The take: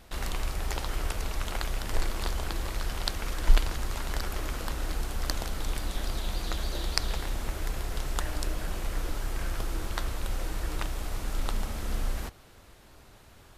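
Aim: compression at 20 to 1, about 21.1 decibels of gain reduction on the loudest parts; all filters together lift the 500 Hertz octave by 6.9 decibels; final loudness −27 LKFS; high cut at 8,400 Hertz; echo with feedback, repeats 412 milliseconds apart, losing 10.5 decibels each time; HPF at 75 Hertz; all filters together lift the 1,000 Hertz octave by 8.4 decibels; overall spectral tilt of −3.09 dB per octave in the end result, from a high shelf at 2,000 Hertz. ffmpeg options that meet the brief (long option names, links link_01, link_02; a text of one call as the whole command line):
ffmpeg -i in.wav -af "highpass=75,lowpass=8400,equalizer=frequency=500:width_type=o:gain=6,equalizer=frequency=1000:width_type=o:gain=7.5,highshelf=frequency=2000:gain=5.5,acompressor=threshold=-40dB:ratio=20,aecho=1:1:412|824|1236:0.299|0.0896|0.0269,volume=17dB" out.wav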